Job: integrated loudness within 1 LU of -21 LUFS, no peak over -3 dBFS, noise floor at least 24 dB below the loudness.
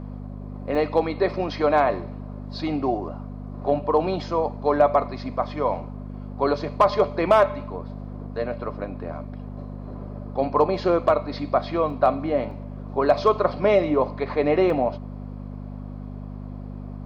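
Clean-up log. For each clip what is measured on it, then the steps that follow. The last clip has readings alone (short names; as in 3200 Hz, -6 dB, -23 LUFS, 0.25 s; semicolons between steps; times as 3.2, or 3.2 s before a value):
dropouts 4; longest dropout 1.4 ms; hum 50 Hz; harmonics up to 250 Hz; hum level -32 dBFS; loudness -23.0 LUFS; peak -7.0 dBFS; loudness target -21.0 LUFS
-> interpolate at 0.75/11.9/12.51/14.7, 1.4 ms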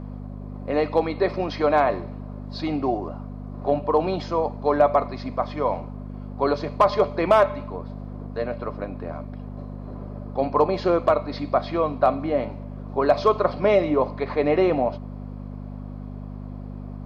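dropouts 0; hum 50 Hz; harmonics up to 250 Hz; hum level -32 dBFS
-> de-hum 50 Hz, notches 5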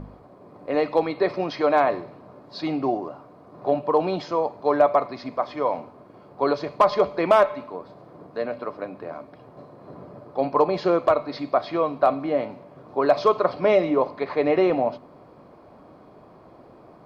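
hum none; loudness -23.0 LUFS; peak -7.5 dBFS; loudness target -21.0 LUFS
-> gain +2 dB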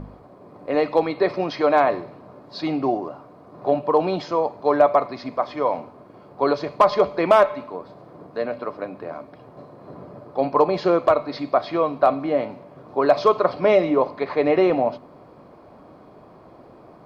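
loudness -21.0 LUFS; peak -5.5 dBFS; noise floor -48 dBFS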